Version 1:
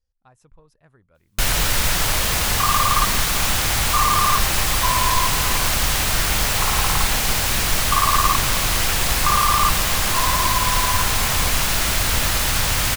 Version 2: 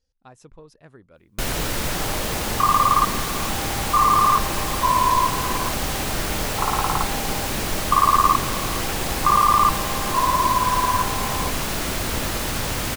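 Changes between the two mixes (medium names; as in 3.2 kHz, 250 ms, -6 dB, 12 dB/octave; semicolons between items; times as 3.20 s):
speech: add peaking EQ 4.6 kHz +9.5 dB 2.7 oct; first sound -7.5 dB; master: add peaking EQ 320 Hz +11.5 dB 2.3 oct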